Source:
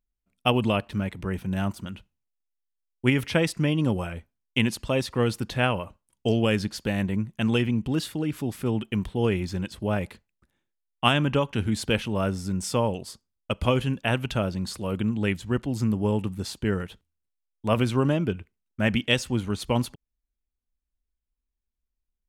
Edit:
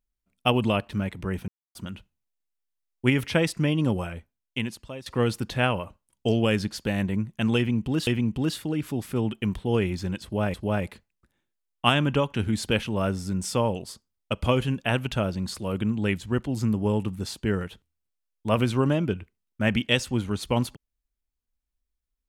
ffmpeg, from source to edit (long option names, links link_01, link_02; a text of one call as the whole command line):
ffmpeg -i in.wav -filter_complex "[0:a]asplit=6[link_01][link_02][link_03][link_04][link_05][link_06];[link_01]atrim=end=1.48,asetpts=PTS-STARTPTS,afade=type=out:start_time=1.476:duration=0.004:curve=hsin[link_07];[link_02]atrim=start=1.48:end=1.75,asetpts=PTS-STARTPTS,volume=0[link_08];[link_03]atrim=start=1.75:end=5.06,asetpts=PTS-STARTPTS,afade=type=in:duration=0.004:curve=hsin,afade=type=out:start_time=2.23:duration=1.08:silence=0.125893[link_09];[link_04]atrim=start=5.06:end=8.072,asetpts=PTS-STARTPTS,afade=type=in:duration=0.004:curve=hsin:silence=0.125893[link_10];[link_05]atrim=start=7.568:end=10.042[link_11];[link_06]atrim=start=9.728[link_12];[link_07][link_08][link_09][link_10]concat=n=4:v=0:a=1[link_13];[link_13][link_11]acrossfade=duration=0.004:curve1=hsin:curve2=hsin[link_14];[link_14][link_12]acrossfade=duration=0.004:curve1=hsin:curve2=hsin" out.wav